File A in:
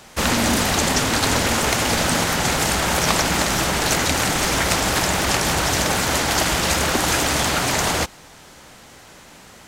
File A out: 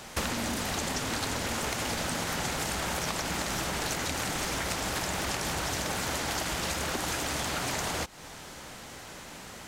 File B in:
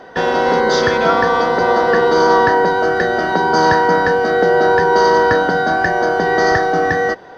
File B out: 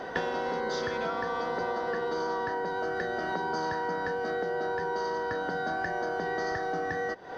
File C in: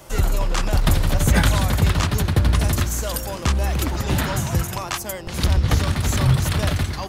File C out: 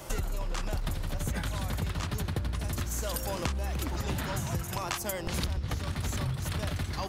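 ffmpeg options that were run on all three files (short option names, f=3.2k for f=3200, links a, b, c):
-af "acompressor=threshold=-28dB:ratio=20"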